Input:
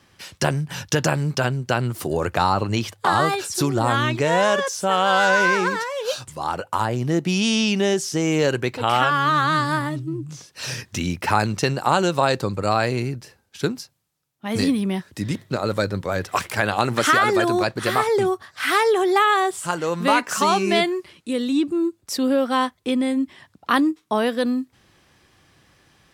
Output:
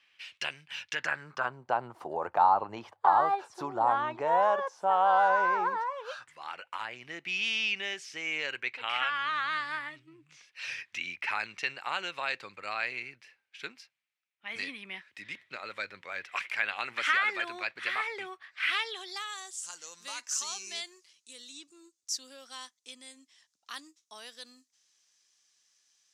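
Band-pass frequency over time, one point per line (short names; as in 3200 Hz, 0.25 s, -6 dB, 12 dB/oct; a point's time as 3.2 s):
band-pass, Q 3.2
0.81 s 2600 Hz
1.66 s 860 Hz
5.82 s 860 Hz
6.44 s 2300 Hz
18.62 s 2300 Hz
19.31 s 6300 Hz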